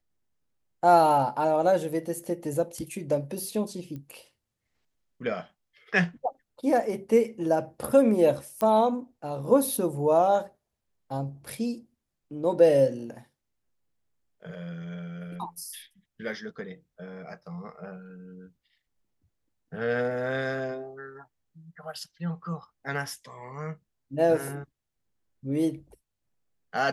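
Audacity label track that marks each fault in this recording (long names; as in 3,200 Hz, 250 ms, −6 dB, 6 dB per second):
3.960000	3.960000	click −28 dBFS
8.610000	8.610000	click −15 dBFS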